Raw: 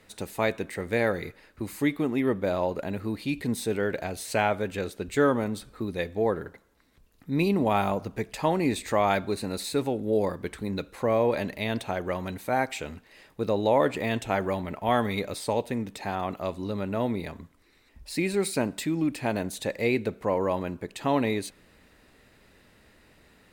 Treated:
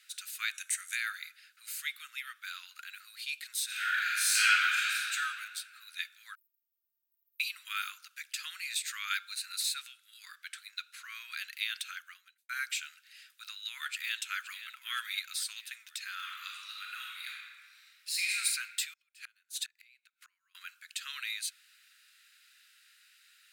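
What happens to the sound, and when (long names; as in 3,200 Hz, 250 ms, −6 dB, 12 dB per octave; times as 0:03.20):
0:00.54–0:00.96: gain on a spectral selection 5,600–12,000 Hz +12 dB
0:03.65–0:05.12: thrown reverb, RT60 2.2 s, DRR −10 dB
0:06.35–0:07.40: inverse Chebyshev band-stop filter 770–4,800 Hz, stop band 80 dB
0:09.74–0:11.15: high-shelf EQ 8,600 Hz −6 dB
0:11.91–0:12.49: fade out quadratic
0:13.51–0:14.20: delay throw 520 ms, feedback 60%, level −12 dB
0:16.12–0:18.38: thrown reverb, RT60 1.7 s, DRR −2.5 dB
0:18.93–0:20.55: gate with flip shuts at −20 dBFS, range −30 dB
whole clip: Butterworth high-pass 1,400 Hz 72 dB per octave; parametric band 1,900 Hz −9.5 dB 0.56 octaves; level +3.5 dB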